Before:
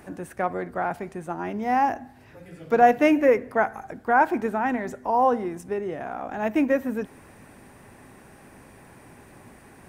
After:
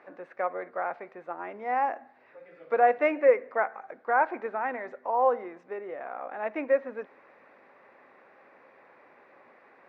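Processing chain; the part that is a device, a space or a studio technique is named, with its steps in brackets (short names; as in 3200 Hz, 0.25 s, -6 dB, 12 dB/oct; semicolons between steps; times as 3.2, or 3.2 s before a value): phone earpiece (speaker cabinet 460–3500 Hz, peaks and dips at 530 Hz +8 dB, 1200 Hz +5 dB, 2100 Hz +4 dB, 3100 Hz -8 dB); gain -6 dB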